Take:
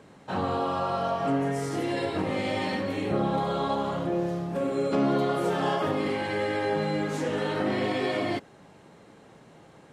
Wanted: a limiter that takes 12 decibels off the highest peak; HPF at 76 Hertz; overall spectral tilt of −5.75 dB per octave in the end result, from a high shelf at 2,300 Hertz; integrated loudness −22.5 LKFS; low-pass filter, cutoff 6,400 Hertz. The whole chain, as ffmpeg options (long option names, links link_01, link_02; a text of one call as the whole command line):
ffmpeg -i in.wav -af "highpass=76,lowpass=6400,highshelf=frequency=2300:gain=-7.5,volume=11dB,alimiter=limit=-14dB:level=0:latency=1" out.wav